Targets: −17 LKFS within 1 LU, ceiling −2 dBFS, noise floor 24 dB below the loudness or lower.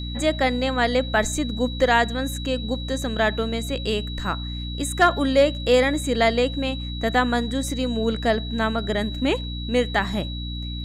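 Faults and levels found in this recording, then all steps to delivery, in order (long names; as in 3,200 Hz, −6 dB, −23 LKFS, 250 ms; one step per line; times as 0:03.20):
mains hum 60 Hz; hum harmonics up to 300 Hz; level of the hum −28 dBFS; interfering tone 3,900 Hz; level of the tone −35 dBFS; integrated loudness −23.0 LKFS; sample peak −6.5 dBFS; target loudness −17.0 LKFS
→ hum removal 60 Hz, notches 5
notch filter 3,900 Hz, Q 30
level +6 dB
brickwall limiter −2 dBFS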